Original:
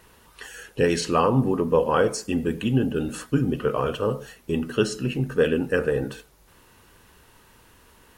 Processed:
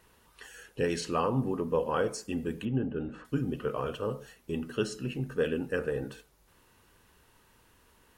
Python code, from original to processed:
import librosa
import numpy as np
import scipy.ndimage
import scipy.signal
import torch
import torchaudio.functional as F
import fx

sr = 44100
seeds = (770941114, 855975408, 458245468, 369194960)

y = fx.lowpass(x, sr, hz=1900.0, slope=12, at=(2.65, 3.25))
y = y * librosa.db_to_amplitude(-8.5)